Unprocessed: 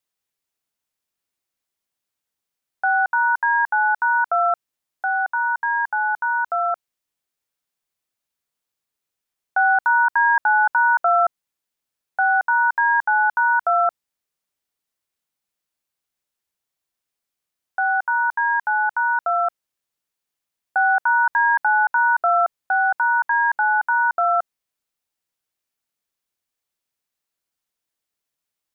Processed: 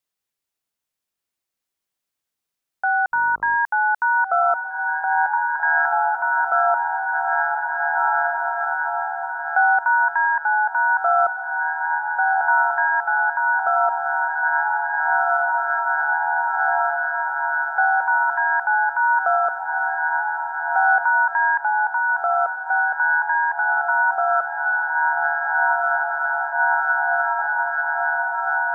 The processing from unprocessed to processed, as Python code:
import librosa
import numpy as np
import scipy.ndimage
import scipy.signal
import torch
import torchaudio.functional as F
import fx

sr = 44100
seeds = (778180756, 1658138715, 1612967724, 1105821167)

y = fx.echo_diffused(x, sr, ms=1733, feedback_pct=71, wet_db=-5.0)
y = fx.dmg_buzz(y, sr, base_hz=50.0, harmonics=27, level_db=-47.0, tilt_db=-2, odd_only=False, at=(3.12, 3.55), fade=0.02)
y = fx.rider(y, sr, range_db=5, speed_s=2.0)